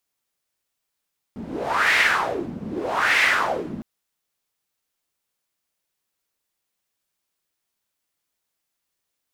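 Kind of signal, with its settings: wind-like swept noise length 2.46 s, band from 210 Hz, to 2100 Hz, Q 3.8, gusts 2, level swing 14.5 dB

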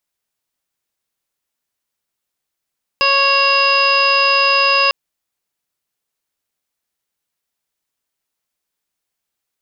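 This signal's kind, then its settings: steady additive tone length 1.90 s, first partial 552 Hz, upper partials 4.5/-4/-10/6/-12/-10/-13/3 dB, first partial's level -20.5 dB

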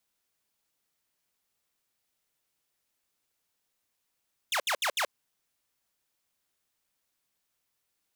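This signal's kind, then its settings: burst of laser zaps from 3800 Hz, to 480 Hz, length 0.08 s saw, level -23 dB, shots 4, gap 0.07 s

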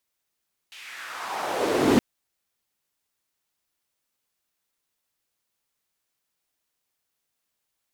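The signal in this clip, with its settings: swept filtered noise white, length 1.27 s bandpass, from 2900 Hz, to 240 Hz, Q 2.2, exponential, gain ramp +38 dB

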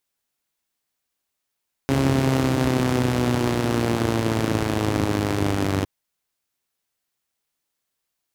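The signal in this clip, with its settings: four-cylinder engine model, changing speed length 3.96 s, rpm 4100, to 2900, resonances 92/140/260 Hz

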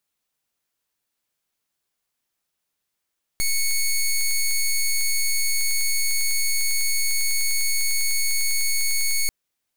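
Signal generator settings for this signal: pulse 2210 Hz, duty 10% -20.5 dBFS 5.89 s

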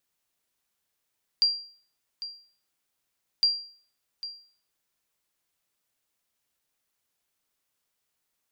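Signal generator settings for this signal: sonar ping 4750 Hz, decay 0.47 s, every 2.01 s, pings 2, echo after 0.80 s, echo -14.5 dB -15 dBFS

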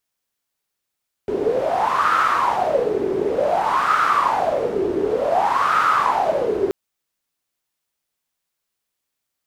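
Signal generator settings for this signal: wind-like swept noise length 5.43 s, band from 380 Hz, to 1300 Hz, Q 9.1, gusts 3, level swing 4 dB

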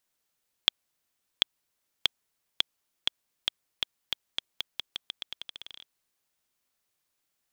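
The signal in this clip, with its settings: bouncing ball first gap 0.74 s, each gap 0.86, 3370 Hz, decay 10 ms -2 dBFS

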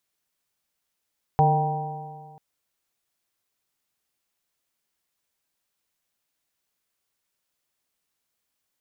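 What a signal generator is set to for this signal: stretched partials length 0.99 s, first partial 149 Hz, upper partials -19.5/-7/-12/2/-10 dB, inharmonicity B 0.0039, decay 1.85 s, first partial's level -18 dB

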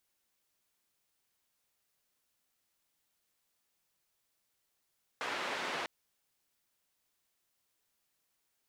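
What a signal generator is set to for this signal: noise band 300–2200 Hz, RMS -37.5 dBFS 0.65 s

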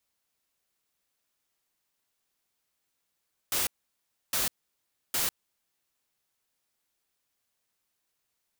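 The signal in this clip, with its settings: noise bursts white, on 0.15 s, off 0.66 s, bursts 3, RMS -28 dBFS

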